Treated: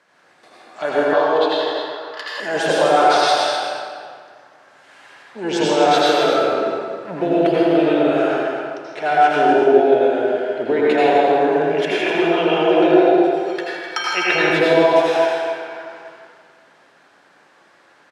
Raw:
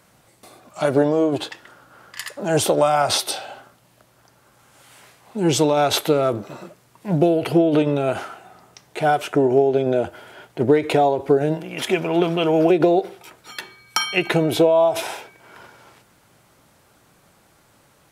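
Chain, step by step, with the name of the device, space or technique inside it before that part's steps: station announcement (band-pass 340–4800 Hz; peaking EQ 1.7 kHz +9 dB 0.23 oct; loudspeakers at several distances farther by 55 m -9 dB, 87 m -10 dB; reverberation RT60 2.0 s, pre-delay 76 ms, DRR -6.5 dB); 1.13–2.40 s: graphic EQ 125/250/1000/2000/4000/8000 Hz -6/-11/+10/-6/+9/-7 dB; trim -3 dB

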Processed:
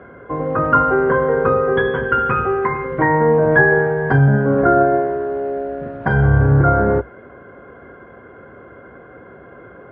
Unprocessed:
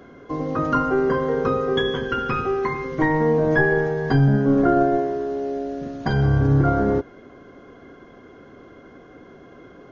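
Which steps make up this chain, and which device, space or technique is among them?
bass cabinet (cabinet simulation 60–2400 Hz, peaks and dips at 63 Hz +8 dB, 110 Hz +4 dB, 280 Hz -6 dB, 540 Hz +5 dB, 920 Hz +4 dB, 1.5 kHz +7 dB); trim +3.5 dB

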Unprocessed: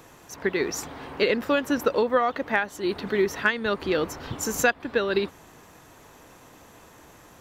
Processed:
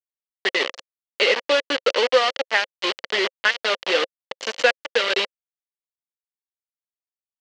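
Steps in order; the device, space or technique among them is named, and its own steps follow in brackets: hand-held game console (bit crusher 4-bit; cabinet simulation 470–5600 Hz, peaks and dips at 530 Hz +9 dB, 2 kHz +6 dB, 3 kHz +10 dB, 4.4 kHz +5 dB)

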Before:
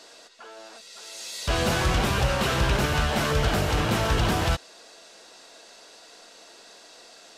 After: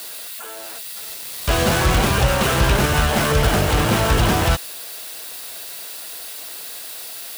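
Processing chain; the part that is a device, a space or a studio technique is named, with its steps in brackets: budget class-D amplifier (dead-time distortion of 0.091 ms; zero-crossing glitches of -27 dBFS); trim +6.5 dB

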